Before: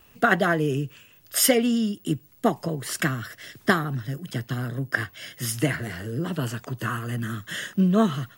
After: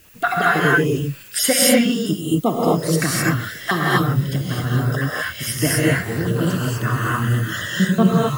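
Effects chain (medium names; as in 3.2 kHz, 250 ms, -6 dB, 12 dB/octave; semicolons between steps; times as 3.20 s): random holes in the spectrogram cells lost 31%; in parallel at -2 dB: peak limiter -17 dBFS, peak gain reduction 10 dB; on the sum: added noise blue -52 dBFS; gated-style reverb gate 280 ms rising, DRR -5 dB; trim -1 dB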